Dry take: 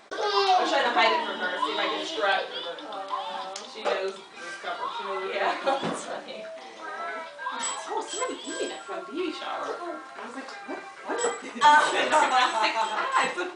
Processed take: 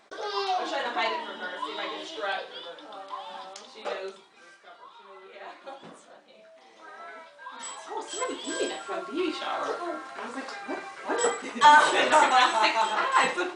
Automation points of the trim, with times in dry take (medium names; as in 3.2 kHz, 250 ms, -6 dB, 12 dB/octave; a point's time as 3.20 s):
4.07 s -6.5 dB
4.61 s -17 dB
6.26 s -17 dB
6.81 s -9.5 dB
7.57 s -9.5 dB
8.46 s +1.5 dB